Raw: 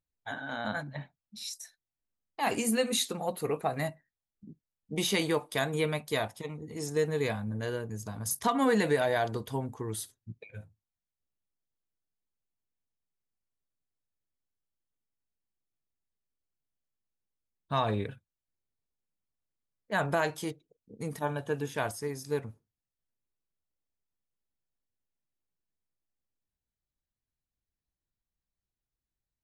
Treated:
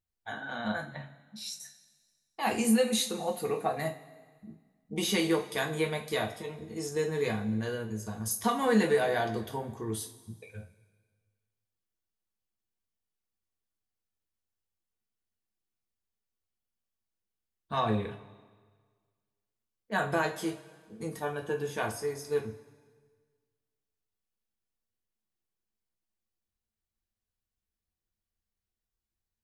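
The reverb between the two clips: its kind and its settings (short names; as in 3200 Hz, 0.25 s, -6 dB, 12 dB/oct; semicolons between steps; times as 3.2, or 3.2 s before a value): two-slope reverb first 0.26 s, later 1.6 s, from -18 dB, DRR 1.5 dB; gain -2.5 dB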